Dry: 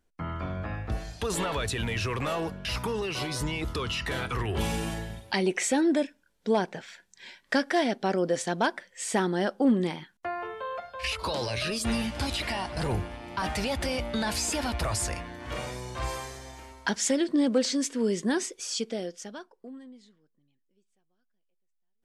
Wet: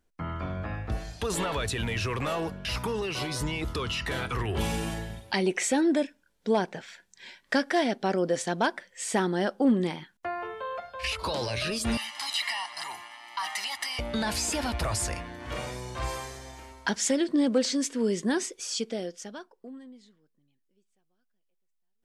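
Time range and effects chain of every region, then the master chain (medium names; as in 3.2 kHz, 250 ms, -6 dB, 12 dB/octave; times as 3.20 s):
11.97–13.99 s: high-pass 1.2 kHz + comb 1 ms, depth 84%
whole clip: none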